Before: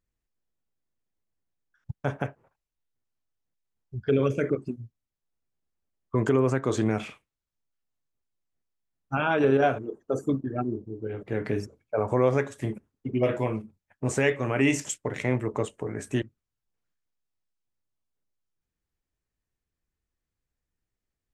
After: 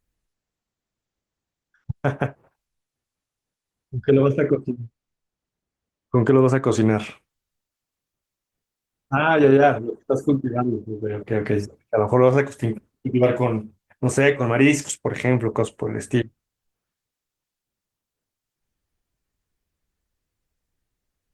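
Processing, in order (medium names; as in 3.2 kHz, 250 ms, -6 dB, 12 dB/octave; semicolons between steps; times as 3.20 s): 4.10–6.38 s: low-pass 2.4 kHz 6 dB/octave; trim +7 dB; Opus 20 kbps 48 kHz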